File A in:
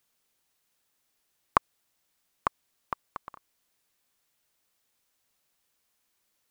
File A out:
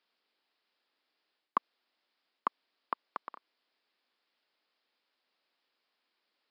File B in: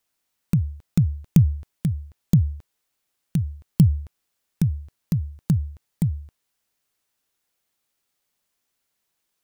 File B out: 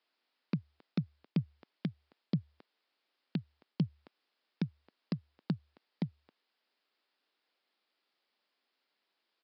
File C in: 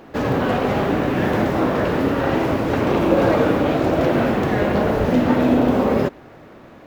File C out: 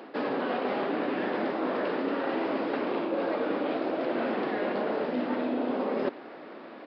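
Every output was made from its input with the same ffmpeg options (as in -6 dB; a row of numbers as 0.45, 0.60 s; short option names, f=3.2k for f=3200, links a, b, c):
-af "highpass=f=240:w=0.5412,highpass=f=240:w=1.3066,areverse,acompressor=threshold=-26dB:ratio=10,areverse,aresample=11025,aresample=44100"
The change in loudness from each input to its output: -6.5, -15.5, -11.0 LU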